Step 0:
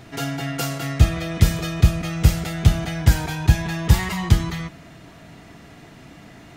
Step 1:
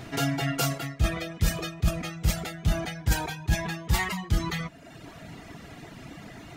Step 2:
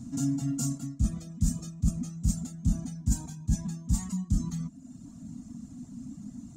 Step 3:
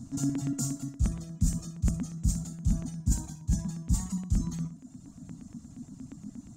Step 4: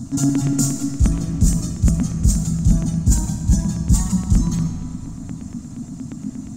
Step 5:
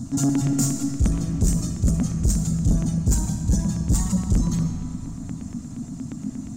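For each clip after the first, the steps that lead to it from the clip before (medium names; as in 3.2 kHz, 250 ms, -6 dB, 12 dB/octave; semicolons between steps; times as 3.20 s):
reverb removal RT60 0.87 s; reverse; compression 6:1, threshold -24 dBFS, peak gain reduction 16 dB; reverse; trim +2.5 dB
FFT filter 150 Hz 0 dB, 250 Hz +14 dB, 360 Hz -20 dB, 1.1 kHz -15 dB, 2 kHz -27 dB, 3.1 kHz -22 dB, 5 kHz -9 dB, 7.2 kHz +6 dB, 12 kHz -12 dB; trim -2.5 dB
flutter echo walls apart 10.4 m, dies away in 0.32 s; LFO notch square 8.5 Hz 230–2500 Hz
in parallel at -4 dB: saturation -24.5 dBFS, distortion -10 dB; on the sum: reverberation RT60 3.3 s, pre-delay 55 ms, DRR 6 dB; trim +8.5 dB
saturation -11 dBFS, distortion -14 dB; trim -1.5 dB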